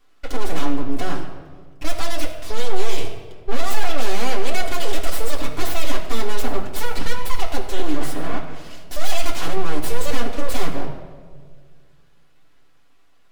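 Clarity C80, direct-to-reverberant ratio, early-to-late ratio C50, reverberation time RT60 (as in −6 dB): 8.5 dB, −3.0 dB, 7.0 dB, 1.7 s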